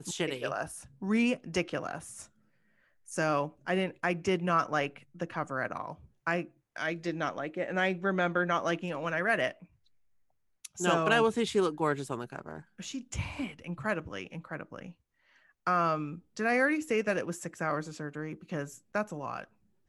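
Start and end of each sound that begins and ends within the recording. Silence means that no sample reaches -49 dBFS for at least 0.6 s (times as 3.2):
3.08–9.64
10.65–14.92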